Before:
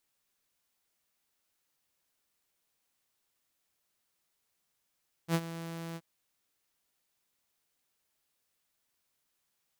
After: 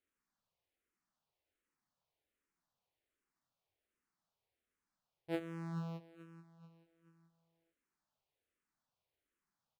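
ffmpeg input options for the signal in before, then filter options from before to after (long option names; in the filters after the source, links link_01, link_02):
-f lavfi -i "aevalsrc='0.0841*(2*mod(166*t,1)-1)':duration=0.726:sample_rate=44100,afade=type=in:duration=0.066,afade=type=out:start_time=0.066:duration=0.053:silence=0.188,afade=type=out:start_time=0.68:duration=0.046"
-filter_complex "[0:a]lowpass=frequency=1300:poles=1,aecho=1:1:433|866|1299|1732:0.2|0.0838|0.0352|0.0148,asplit=2[link_01][link_02];[link_02]afreqshift=-1.3[link_03];[link_01][link_03]amix=inputs=2:normalize=1"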